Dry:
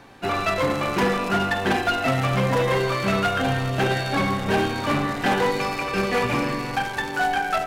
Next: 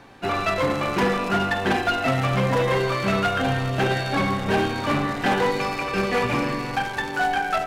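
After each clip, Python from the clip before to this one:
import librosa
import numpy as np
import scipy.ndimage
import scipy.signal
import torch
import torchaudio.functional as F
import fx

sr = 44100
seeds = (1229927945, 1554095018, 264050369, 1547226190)

y = fx.high_shelf(x, sr, hz=8000.0, db=-4.5)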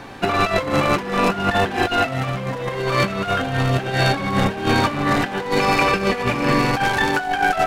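y = fx.over_compress(x, sr, threshold_db=-26.0, ratio=-0.5)
y = F.gain(torch.from_numpy(y), 7.0).numpy()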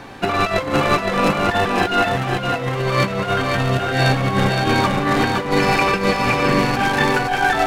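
y = x + 10.0 ** (-3.5 / 20.0) * np.pad(x, (int(515 * sr / 1000.0), 0))[:len(x)]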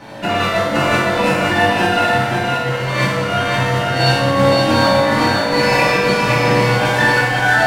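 y = fx.rev_fdn(x, sr, rt60_s=1.2, lf_ratio=1.0, hf_ratio=0.95, size_ms=10.0, drr_db=-10.0)
y = F.gain(torch.from_numpy(y), -6.0).numpy()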